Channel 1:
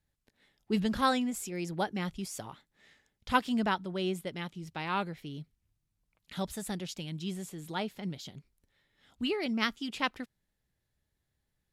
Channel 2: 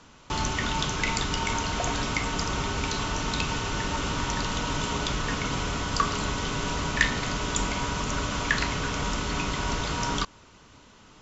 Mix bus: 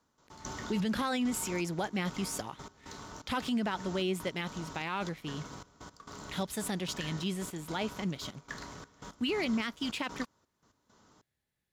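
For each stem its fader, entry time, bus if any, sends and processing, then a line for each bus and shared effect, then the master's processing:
0.0 dB, 0.00 s, no send, peaking EQ 2.3 kHz +3 dB
-6.0 dB, 0.00 s, no send, peaking EQ 2.6 kHz -13 dB 0.75 oct; trance gate "..x..xxxx" 168 bpm -12 dB; auto duck -11 dB, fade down 0.95 s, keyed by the first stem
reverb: none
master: waveshaping leveller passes 1; high-pass 120 Hz 6 dB/octave; peak limiter -24 dBFS, peak gain reduction 13 dB

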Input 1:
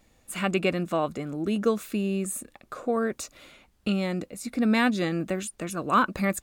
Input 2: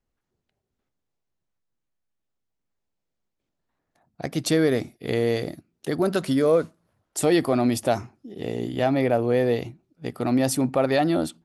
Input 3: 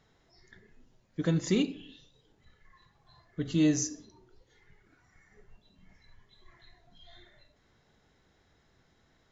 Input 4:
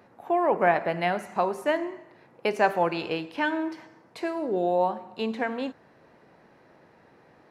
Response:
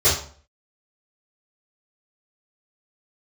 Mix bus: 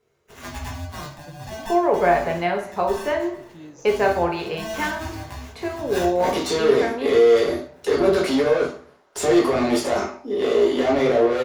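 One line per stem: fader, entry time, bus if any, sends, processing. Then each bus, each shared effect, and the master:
-13.0 dB, 0.00 s, send -16 dB, echo send -17.5 dB, sample-and-hold 10×; polarity switched at an audio rate 440 Hz
-0.5 dB, 2.00 s, send -15 dB, no echo send, steep high-pass 190 Hz 48 dB/octave; peak limiter -19 dBFS, peak gain reduction 9 dB; overdrive pedal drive 21 dB, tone 3.1 kHz, clips at -19 dBFS
-17.5 dB, 0.00 s, no send, no echo send, none
0.0 dB, 1.40 s, send -19.5 dB, no echo send, none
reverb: on, RT60 0.45 s, pre-delay 3 ms
echo: feedback delay 455 ms, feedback 55%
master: none

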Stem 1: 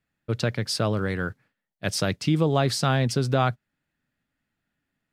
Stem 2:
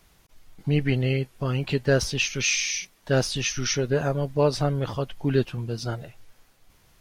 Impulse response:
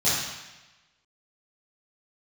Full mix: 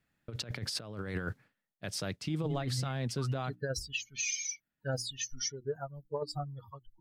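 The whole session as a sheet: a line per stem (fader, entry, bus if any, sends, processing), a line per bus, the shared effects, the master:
1.36 s -1 dB -> 1.95 s -12 dB, 0.00 s, no send, none
-7.5 dB, 1.75 s, no send, expander on every frequency bin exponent 3; peaking EQ 6.6 kHz +7 dB 0.44 oct; hum notches 60/120/180/240/300/360 Hz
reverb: none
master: compressor with a negative ratio -32 dBFS, ratio -0.5; peak limiter -24 dBFS, peak gain reduction 7 dB

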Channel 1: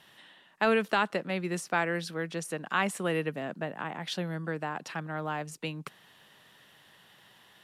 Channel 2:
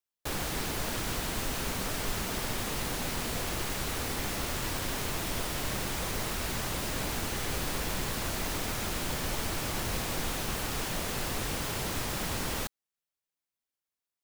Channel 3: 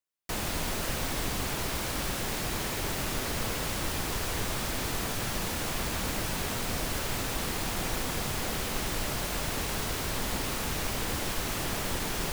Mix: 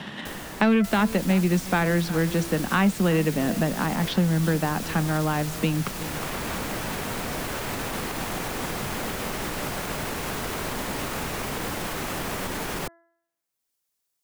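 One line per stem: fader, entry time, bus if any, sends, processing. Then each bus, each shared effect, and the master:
+2.0 dB, 0.00 s, no send, echo send -18.5 dB, low-pass 6.8 kHz; peaking EQ 210 Hz +13 dB 1.1 oct; waveshaping leveller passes 1
-15.5 dB, 0.00 s, no send, no echo send, tone controls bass -8 dB, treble +8 dB; bass shelf 250 Hz +11 dB; auto duck -10 dB, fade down 0.75 s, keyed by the first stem
-5.0 dB, 0.55 s, no send, no echo send, treble shelf 4.6 kHz +5.5 dB; peak limiter -21 dBFS, peak gain reduction 4.5 dB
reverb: none
echo: delay 364 ms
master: de-hum 336.4 Hz, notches 6; three bands compressed up and down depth 70%

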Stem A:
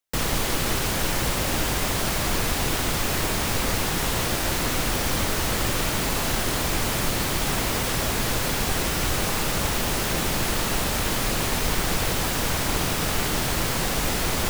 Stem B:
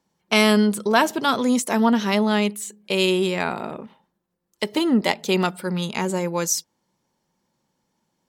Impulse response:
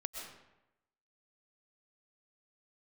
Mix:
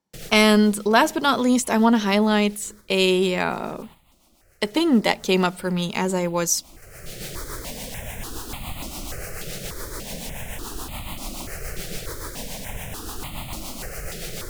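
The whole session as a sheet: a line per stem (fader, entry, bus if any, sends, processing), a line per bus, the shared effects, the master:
-4.0 dB, 0.00 s, no send, rotary cabinet horn 7 Hz; stepped phaser 3.4 Hz 270–1600 Hz; auto duck -17 dB, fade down 0.80 s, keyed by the second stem
+1.0 dB, 0.00 s, no send, none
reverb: none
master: gate -43 dBFS, range -9 dB

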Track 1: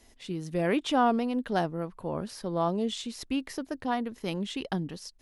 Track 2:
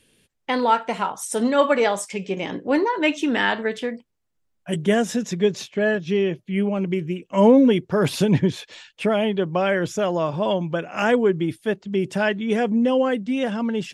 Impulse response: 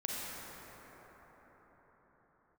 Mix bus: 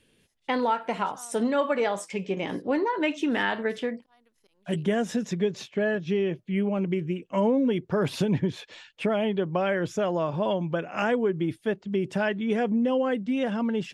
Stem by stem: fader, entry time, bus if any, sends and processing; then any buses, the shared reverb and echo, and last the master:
-14.0 dB, 0.20 s, no send, high-pass 500 Hz 6 dB/octave; tilt EQ +2 dB/octave; slow attack 184 ms; auto duck -9 dB, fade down 0.75 s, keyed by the second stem
-2.0 dB, 0.00 s, no send, treble shelf 4.8 kHz -8.5 dB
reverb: none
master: compression 3:1, threshold -22 dBFS, peak gain reduction 8.5 dB

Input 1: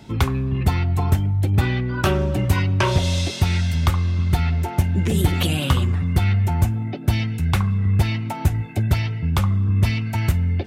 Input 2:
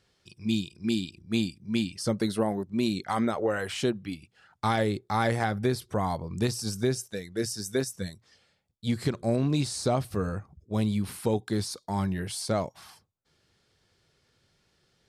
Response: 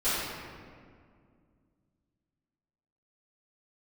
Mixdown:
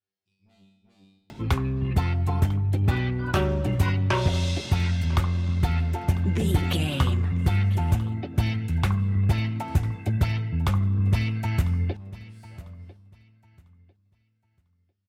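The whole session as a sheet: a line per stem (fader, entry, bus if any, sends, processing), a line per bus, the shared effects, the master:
-4.0 dB, 1.30 s, no send, echo send -18 dB, upward compressor, threshold -33 dBFS
-9.5 dB, 0.00 s, send -22 dB, no echo send, valve stage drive 32 dB, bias 0.5; feedback comb 97 Hz, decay 0.62 s, harmonics all, mix 100%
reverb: on, RT60 2.1 s, pre-delay 4 ms
echo: feedback delay 998 ms, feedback 22%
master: treble shelf 5.2 kHz -5.5 dB; Chebyshev shaper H 8 -36 dB, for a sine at -10.5 dBFS

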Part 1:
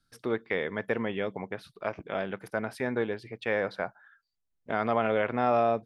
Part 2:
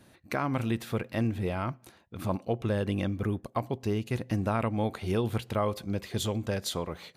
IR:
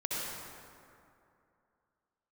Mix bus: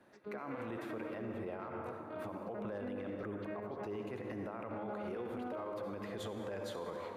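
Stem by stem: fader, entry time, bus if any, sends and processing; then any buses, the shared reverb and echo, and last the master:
+1.5 dB, 0.00 s, no send, vocoder on a broken chord minor triad, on G#3, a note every 394 ms; auto duck -12 dB, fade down 0.30 s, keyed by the second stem
-5.0 dB, 0.00 s, send -5.5 dB, three-band isolator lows -15 dB, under 290 Hz, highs -16 dB, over 2.1 kHz; peak limiter -25 dBFS, peak gain reduction 9.5 dB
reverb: on, RT60 2.6 s, pre-delay 58 ms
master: peak limiter -33.5 dBFS, peak gain reduction 11 dB

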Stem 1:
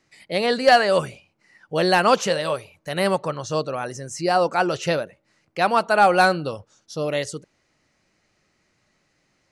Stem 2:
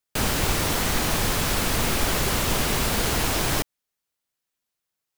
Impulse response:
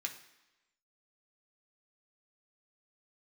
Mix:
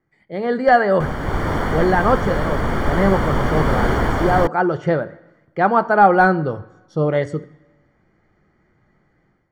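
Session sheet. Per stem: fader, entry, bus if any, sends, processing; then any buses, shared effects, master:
-9.0 dB, 0.00 s, send -3.5 dB, bass shelf 250 Hz +11 dB
-3.0 dB, 0.85 s, no send, level rider gain up to 14 dB; auto duck -8 dB, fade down 1.40 s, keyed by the first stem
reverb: on, RT60 1.0 s, pre-delay 3 ms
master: level rider gain up to 12 dB; Savitzky-Golay filter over 41 samples

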